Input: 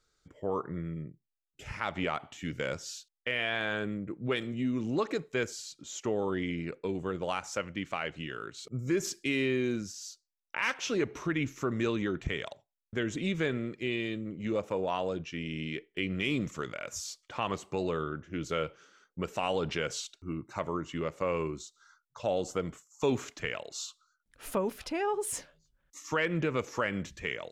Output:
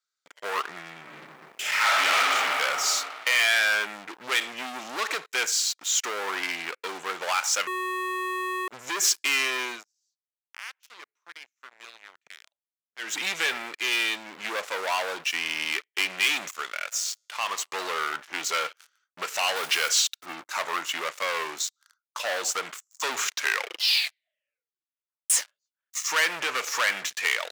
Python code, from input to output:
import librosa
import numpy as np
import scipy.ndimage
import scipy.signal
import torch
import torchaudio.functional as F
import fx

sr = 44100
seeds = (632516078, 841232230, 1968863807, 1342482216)

y = fx.reverb_throw(x, sr, start_s=1.0, length_s=1.34, rt60_s=2.5, drr_db=-6.0)
y = fx.comb_fb(y, sr, f0_hz=110.0, decay_s=1.1, harmonics='all', damping=0.0, mix_pct=60, at=(16.51, 17.58))
y = fx.block_float(y, sr, bits=5, at=(19.56, 20.27))
y = fx.edit(y, sr, fx.bleep(start_s=7.67, length_s=1.01, hz=369.0, db=-23.0),
    fx.fade_down_up(start_s=9.59, length_s=3.65, db=-24.0, fade_s=0.26),
    fx.tape_stop(start_s=23.24, length_s=2.06), tone=tone)
y = fx.leveller(y, sr, passes=5)
y = scipy.signal.sosfilt(scipy.signal.butter(2, 1200.0, 'highpass', fs=sr, output='sos'), y)